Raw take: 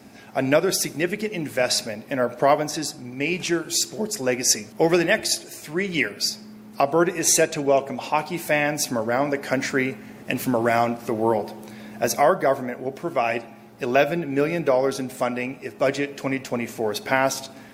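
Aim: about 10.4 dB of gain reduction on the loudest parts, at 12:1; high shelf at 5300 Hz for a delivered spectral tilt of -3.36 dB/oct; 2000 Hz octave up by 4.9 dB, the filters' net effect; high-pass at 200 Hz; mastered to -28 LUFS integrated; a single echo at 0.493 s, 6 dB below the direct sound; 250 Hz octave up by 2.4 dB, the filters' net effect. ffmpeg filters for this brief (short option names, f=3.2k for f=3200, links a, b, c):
-af "highpass=200,equalizer=f=250:t=o:g=4.5,equalizer=f=2k:t=o:g=5,highshelf=f=5.3k:g=6.5,acompressor=threshold=-21dB:ratio=12,aecho=1:1:493:0.501,volume=-2.5dB"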